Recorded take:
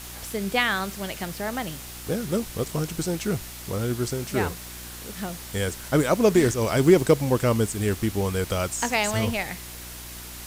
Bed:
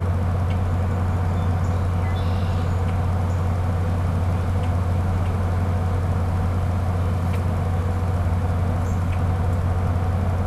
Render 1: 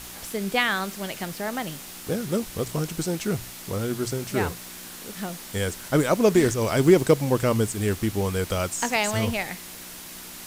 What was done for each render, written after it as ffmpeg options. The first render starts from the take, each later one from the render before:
ffmpeg -i in.wav -af "bandreject=frequency=60:width_type=h:width=4,bandreject=frequency=120:width_type=h:width=4" out.wav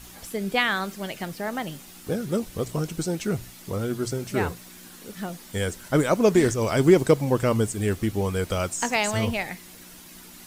ffmpeg -i in.wav -af "afftdn=noise_reduction=8:noise_floor=-41" out.wav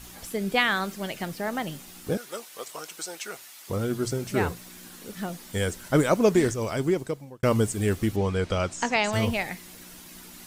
ffmpeg -i in.wav -filter_complex "[0:a]asettb=1/sr,asplit=3[link_01][link_02][link_03];[link_01]atrim=end=2.174[link_04];[link_02]atrim=start=2.17:end=3.7,asetpts=PTS-STARTPTS,afade=type=in:duration=0.004:curve=qsin,afade=type=out:start_time=1.526:duration=0.004:curve=qsin,highpass=830[link_05];[link_03]atrim=start=3.696[link_06];[link_04][link_05]acrossfade=duration=0.004:curve1=hsin:curve2=qsin[link_07];[link_07][link_06]acrossfade=duration=0.004:curve1=qsin:curve2=hsin,asettb=1/sr,asplit=3[link_08][link_09][link_10];[link_08]atrim=end=8.164[link_11];[link_09]atrim=start=8.16:end=9.13,asetpts=PTS-STARTPTS,afade=type=in:duration=0.004:curve=qsin,afade=type=out:start_time=0.966:duration=0.004:curve=qsin,lowpass=5300[link_12];[link_10]atrim=start=9.126[link_13];[link_11][link_12]acrossfade=duration=0.004:curve1=hsin:curve2=qsin[link_14];[link_14][link_13]acrossfade=duration=0.004:curve1=qsin:curve2=hsin,asplit=2[link_15][link_16];[link_15]atrim=end=7.43,asetpts=PTS-STARTPTS,afade=type=out:start_time=6.08:duration=1.35[link_17];[link_16]atrim=start=7.43,asetpts=PTS-STARTPTS,afade=type=in:duration=0.004:curve=hsin[link_18];[link_17][link_18]concat=n=2:v=0:a=1" out.wav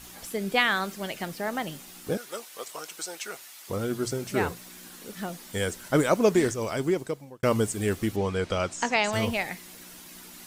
ffmpeg -i in.wav -af "lowshelf=frequency=150:gain=-7" out.wav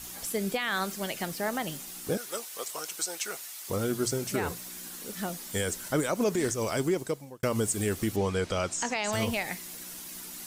ffmpeg -i in.wav -filter_complex "[0:a]acrossover=split=870|5100[link_01][link_02][link_03];[link_03]acontrast=50[link_04];[link_01][link_02][link_04]amix=inputs=3:normalize=0,alimiter=limit=-18dB:level=0:latency=1:release=100" out.wav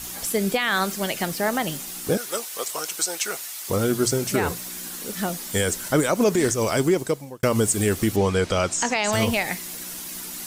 ffmpeg -i in.wav -af "volume=7.5dB" out.wav

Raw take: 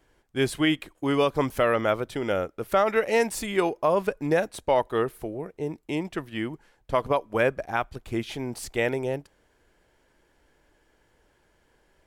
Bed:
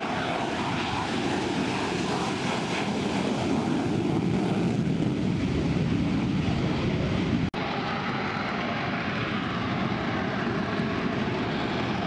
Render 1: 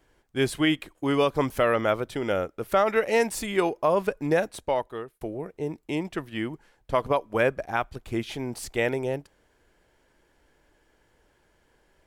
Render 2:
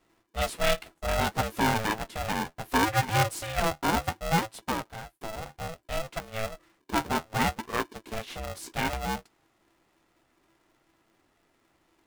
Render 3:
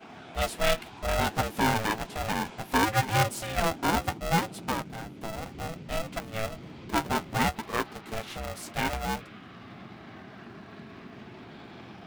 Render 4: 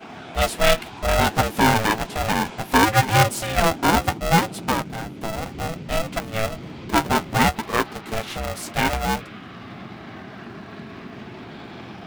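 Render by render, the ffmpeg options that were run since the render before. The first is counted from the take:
ffmpeg -i in.wav -filter_complex "[0:a]asplit=2[link_01][link_02];[link_01]atrim=end=5.21,asetpts=PTS-STARTPTS,afade=type=out:start_time=4.49:duration=0.72[link_03];[link_02]atrim=start=5.21,asetpts=PTS-STARTPTS,afade=type=in:duration=0.004:curve=hsin[link_04];[link_03][link_04]concat=n=2:v=0:a=1" out.wav
ffmpeg -i in.wav -af "flanger=delay=8.4:depth=4.4:regen=46:speed=0.64:shape=sinusoidal,aeval=exprs='val(0)*sgn(sin(2*PI*330*n/s))':channel_layout=same" out.wav
ffmpeg -i in.wav -i bed.wav -filter_complex "[1:a]volume=-18dB[link_01];[0:a][link_01]amix=inputs=2:normalize=0" out.wav
ffmpeg -i in.wav -af "volume=8dB" out.wav

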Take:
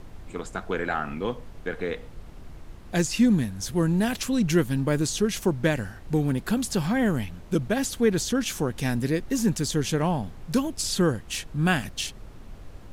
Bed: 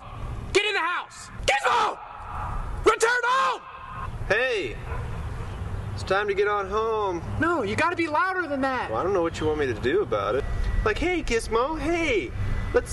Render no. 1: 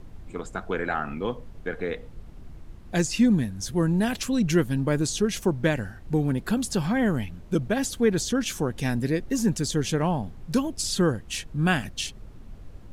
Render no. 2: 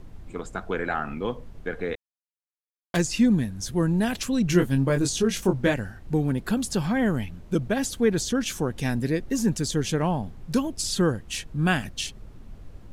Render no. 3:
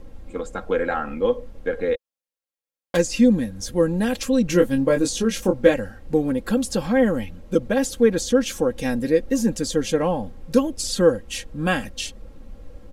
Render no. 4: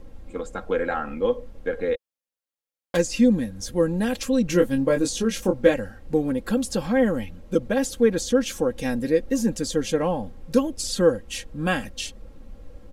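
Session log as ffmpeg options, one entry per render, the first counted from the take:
ffmpeg -i in.wav -af "afftdn=noise_reduction=6:noise_floor=-44" out.wav
ffmpeg -i in.wav -filter_complex "[0:a]asettb=1/sr,asplit=3[link_01][link_02][link_03];[link_01]atrim=end=1.954[link_04];[link_02]atrim=start=1.95:end=2.97,asetpts=PTS-STARTPTS,afade=type=in:duration=0.004:curve=qsin,afade=type=out:start_time=1.016:duration=0.004:curve=qsin,acrusher=bits=3:mix=0:aa=0.5[link_05];[link_03]atrim=start=2.966[link_06];[link_04][link_05]acrossfade=duration=0.004:curve1=hsin:curve2=qsin[link_07];[link_07][link_06]acrossfade=duration=0.004:curve1=qsin:curve2=hsin,asettb=1/sr,asplit=3[link_08][link_09][link_10];[link_08]atrim=end=4.474[link_11];[link_09]atrim=start=4.47:end=5.74,asetpts=PTS-STARTPTS,afade=type=in:duration=0.004:curve=qsin,afade=type=out:start_time=1.266:duration=0.004:curve=qsin,asplit=2[link_12][link_13];[link_13]adelay=22,volume=-5dB[link_14];[link_12][link_14]amix=inputs=2:normalize=0,atrim=end_sample=56007[link_15];[link_10]atrim=start=5.736[link_16];[link_11][link_15]acrossfade=duration=0.004:curve1=hsin:curve2=qsin[link_17];[link_17][link_16]acrossfade=duration=0.004:curve1=qsin:curve2=hsin" out.wav
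ffmpeg -i in.wav -af "equalizer=frequency=500:width=3.6:gain=10.5,aecho=1:1:3.7:0.59" out.wav
ffmpeg -i in.wav -af "volume=-2dB" out.wav

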